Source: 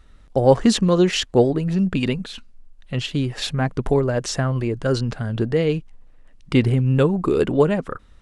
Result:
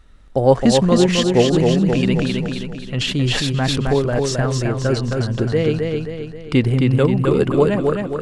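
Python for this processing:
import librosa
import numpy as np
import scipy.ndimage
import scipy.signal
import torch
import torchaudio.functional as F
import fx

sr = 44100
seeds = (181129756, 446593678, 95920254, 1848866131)

y = fx.echo_feedback(x, sr, ms=265, feedback_pct=47, wet_db=-4)
y = fx.sustainer(y, sr, db_per_s=25.0, at=(1.52, 3.93), fade=0.02)
y = y * librosa.db_to_amplitude(1.0)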